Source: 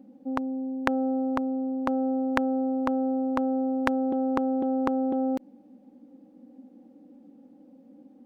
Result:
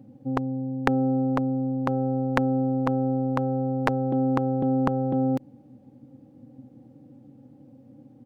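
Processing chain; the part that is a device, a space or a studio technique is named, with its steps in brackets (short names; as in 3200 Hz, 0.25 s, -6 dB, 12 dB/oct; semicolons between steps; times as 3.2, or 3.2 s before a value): octave pedal (harmoniser -12 st -5 dB); gain +1 dB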